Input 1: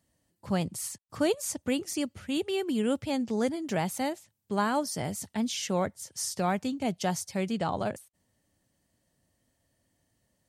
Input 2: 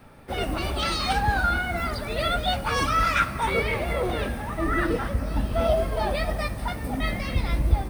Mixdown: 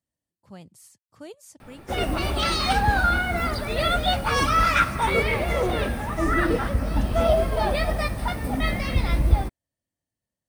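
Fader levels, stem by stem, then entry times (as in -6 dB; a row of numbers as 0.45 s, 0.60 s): -15.0 dB, +2.5 dB; 0.00 s, 1.60 s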